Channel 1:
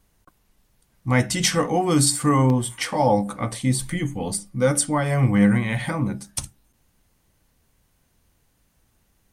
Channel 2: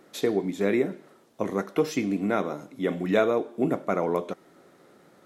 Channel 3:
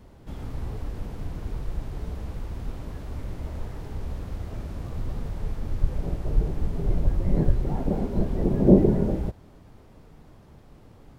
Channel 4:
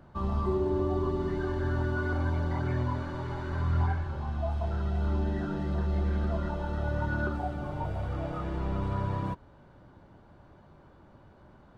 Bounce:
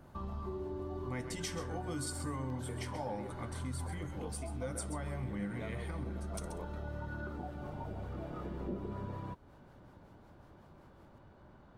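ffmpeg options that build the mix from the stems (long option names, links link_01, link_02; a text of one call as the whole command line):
ffmpeg -i stem1.wav -i stem2.wav -i stem3.wav -i stem4.wav -filter_complex "[0:a]volume=-9.5dB,asplit=2[link_01][link_02];[link_02]volume=-11.5dB[link_03];[1:a]adelay=2450,volume=-14.5dB[link_04];[2:a]highpass=frequency=200:width=0.5412,highpass=frequency=200:width=1.3066,acrossover=split=400[link_05][link_06];[link_05]aeval=exprs='val(0)*(1-0.7/2+0.7/2*cos(2*PI*5.4*n/s))':channel_layout=same[link_07];[link_06]aeval=exprs='val(0)*(1-0.7/2-0.7/2*cos(2*PI*5.4*n/s))':channel_layout=same[link_08];[link_07][link_08]amix=inputs=2:normalize=0,volume=-8.5dB[link_09];[3:a]volume=-3dB[link_10];[link_03]aecho=0:1:131:1[link_11];[link_01][link_04][link_09][link_10][link_11]amix=inputs=5:normalize=0,acompressor=threshold=-42dB:ratio=2.5" out.wav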